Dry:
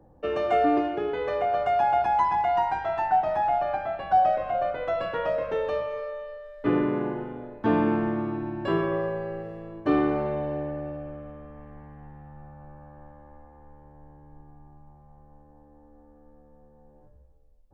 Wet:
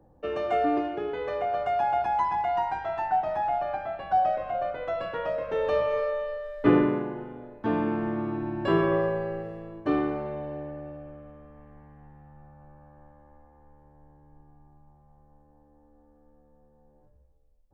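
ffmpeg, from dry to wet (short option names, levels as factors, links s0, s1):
-af "volume=4.47,afade=t=in:st=5.47:d=0.48:silence=0.354813,afade=t=out:st=6.57:d=0.49:silence=0.316228,afade=t=in:st=7.94:d=0.98:silence=0.446684,afade=t=out:st=8.92:d=1.28:silence=0.375837"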